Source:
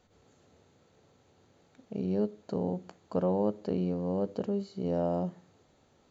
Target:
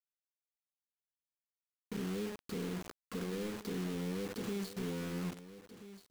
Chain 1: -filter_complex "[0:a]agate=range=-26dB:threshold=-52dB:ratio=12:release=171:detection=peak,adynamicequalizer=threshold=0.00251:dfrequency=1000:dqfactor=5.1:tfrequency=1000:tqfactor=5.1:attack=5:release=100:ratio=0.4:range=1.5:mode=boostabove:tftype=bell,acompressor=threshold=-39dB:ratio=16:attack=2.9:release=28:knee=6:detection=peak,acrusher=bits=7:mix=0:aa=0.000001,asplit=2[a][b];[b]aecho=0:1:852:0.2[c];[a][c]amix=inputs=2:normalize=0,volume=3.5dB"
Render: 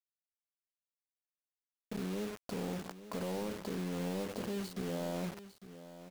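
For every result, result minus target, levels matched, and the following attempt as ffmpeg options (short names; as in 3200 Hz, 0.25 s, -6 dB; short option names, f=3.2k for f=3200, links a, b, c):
echo 0.48 s early; 1000 Hz band +4.0 dB
-filter_complex "[0:a]agate=range=-26dB:threshold=-52dB:ratio=12:release=171:detection=peak,adynamicequalizer=threshold=0.00251:dfrequency=1000:dqfactor=5.1:tfrequency=1000:tqfactor=5.1:attack=5:release=100:ratio=0.4:range=1.5:mode=boostabove:tftype=bell,acompressor=threshold=-39dB:ratio=16:attack=2.9:release=28:knee=6:detection=peak,acrusher=bits=7:mix=0:aa=0.000001,asplit=2[a][b];[b]aecho=0:1:1332:0.2[c];[a][c]amix=inputs=2:normalize=0,volume=3.5dB"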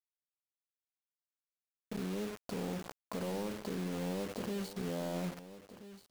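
1000 Hz band +4.0 dB
-filter_complex "[0:a]agate=range=-26dB:threshold=-52dB:ratio=12:release=171:detection=peak,adynamicequalizer=threshold=0.00251:dfrequency=1000:dqfactor=5.1:tfrequency=1000:tqfactor=5.1:attack=5:release=100:ratio=0.4:range=1.5:mode=boostabove:tftype=bell,acompressor=threshold=-39dB:ratio=16:attack=2.9:release=28:knee=6:detection=peak,asuperstop=centerf=750:order=20:qfactor=1.3,acrusher=bits=7:mix=0:aa=0.000001,asplit=2[a][b];[b]aecho=0:1:1332:0.2[c];[a][c]amix=inputs=2:normalize=0,volume=3.5dB"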